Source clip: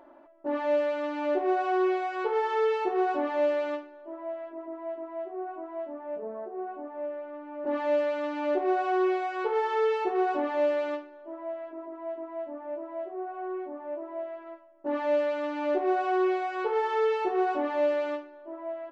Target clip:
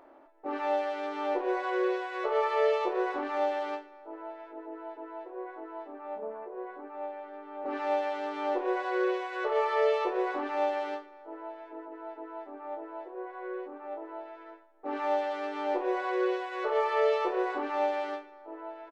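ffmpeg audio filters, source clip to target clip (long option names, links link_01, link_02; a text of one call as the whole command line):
ffmpeg -i in.wav -filter_complex "[0:a]asplit=2[link_01][link_02];[link_02]adelay=25,volume=-7dB[link_03];[link_01][link_03]amix=inputs=2:normalize=0,asplit=3[link_04][link_05][link_06];[link_05]asetrate=58866,aresample=44100,atempo=0.749154,volume=-5dB[link_07];[link_06]asetrate=66075,aresample=44100,atempo=0.66742,volume=-13dB[link_08];[link_04][link_07][link_08]amix=inputs=3:normalize=0,volume=-4.5dB" out.wav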